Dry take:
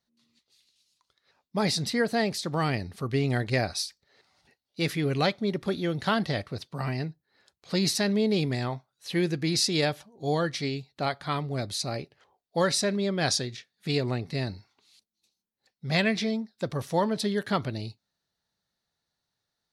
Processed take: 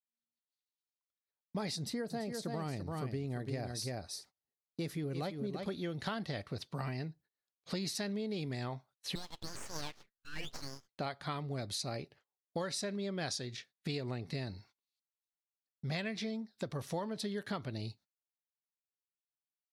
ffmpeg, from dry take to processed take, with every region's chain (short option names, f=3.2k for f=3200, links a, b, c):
-filter_complex "[0:a]asettb=1/sr,asplit=3[a][b][c];[a]atrim=end=1.764[d];[b]atrim=start=1.76:end=5.66,asetpts=PTS-STARTPTS,afade=t=in:d=0.004:c=qsin,afade=t=out:st=3.896:d=0.004:c=qsin,equalizer=f=2.5k:t=o:w=2.3:g=-8.5,aecho=1:1:339:0.447,atrim=end_sample=171990[e];[c]atrim=start=5.656[f];[d][e]acrossfade=d=0.004:c1=hsin:c2=qsin[g];[g][f]acrossfade=d=0.004:c1=qsin:c2=hsin,asettb=1/sr,asplit=3[h][i][j];[h]atrim=end=9.154[k];[i]atrim=start=9.15:end=10.89,asetpts=PTS-STARTPTS,afade=t=in:d=0.004:c=qsin,afade=t=out:st=1.736:d=0.004:c=qsin,asuperpass=centerf=1700:order=8:qfactor=0.71,aeval=exprs='abs(val(0))':c=same[l];[j]atrim=start=10.886[m];[k][l]acrossfade=d=0.004:c1=hsin:c2=qsin[n];[n][m]acrossfade=d=0.004:c1=qsin:c2=hsin,agate=range=-32dB:threshold=-54dB:ratio=16:detection=peak,acompressor=threshold=-34dB:ratio=6,volume=-1.5dB"